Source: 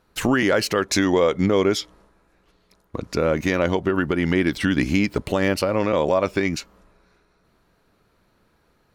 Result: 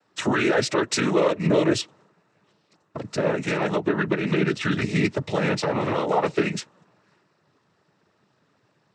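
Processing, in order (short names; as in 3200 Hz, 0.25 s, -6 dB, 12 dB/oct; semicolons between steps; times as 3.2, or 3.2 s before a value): notch comb 270 Hz; noise vocoder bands 12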